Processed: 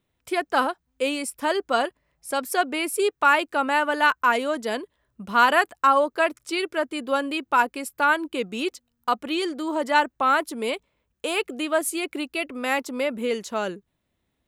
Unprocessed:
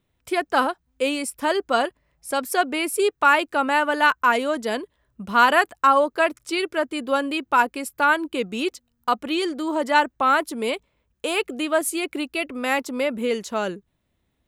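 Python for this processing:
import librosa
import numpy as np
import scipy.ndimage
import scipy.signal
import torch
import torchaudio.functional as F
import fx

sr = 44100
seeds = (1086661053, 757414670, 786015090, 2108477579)

y = fx.low_shelf(x, sr, hz=130.0, db=-5.0)
y = y * librosa.db_to_amplitude(-1.5)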